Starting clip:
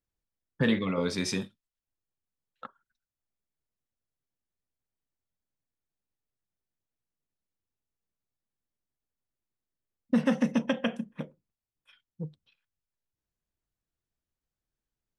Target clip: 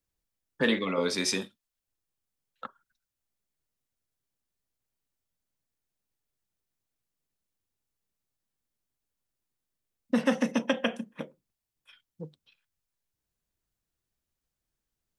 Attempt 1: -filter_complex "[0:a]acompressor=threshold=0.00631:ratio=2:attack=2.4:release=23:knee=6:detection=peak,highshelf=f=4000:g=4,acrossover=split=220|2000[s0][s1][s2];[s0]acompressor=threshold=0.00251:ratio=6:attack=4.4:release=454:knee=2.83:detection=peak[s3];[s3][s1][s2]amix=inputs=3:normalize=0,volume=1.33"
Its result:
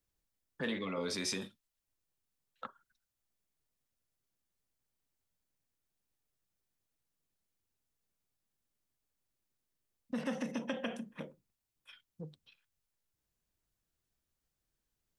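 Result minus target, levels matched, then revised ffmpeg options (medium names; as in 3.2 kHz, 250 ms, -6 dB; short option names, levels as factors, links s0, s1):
compression: peak gain reduction +13.5 dB
-filter_complex "[0:a]highshelf=f=4000:g=4,acrossover=split=220|2000[s0][s1][s2];[s0]acompressor=threshold=0.00251:ratio=6:attack=4.4:release=454:knee=2.83:detection=peak[s3];[s3][s1][s2]amix=inputs=3:normalize=0,volume=1.33"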